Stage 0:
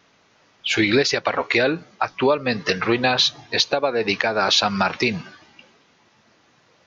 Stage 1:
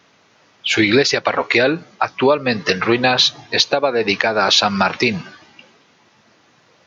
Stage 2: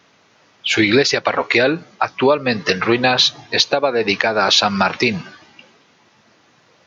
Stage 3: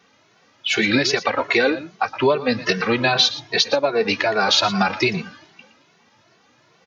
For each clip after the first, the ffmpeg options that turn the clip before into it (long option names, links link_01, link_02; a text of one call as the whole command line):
ffmpeg -i in.wav -af "highpass=79,volume=4dB" out.wav
ffmpeg -i in.wav -af anull out.wav
ffmpeg -i in.wav -filter_complex "[0:a]aecho=1:1:117:0.188,asplit=2[link_01][link_02];[link_02]adelay=2.2,afreqshift=2.5[link_03];[link_01][link_03]amix=inputs=2:normalize=1" out.wav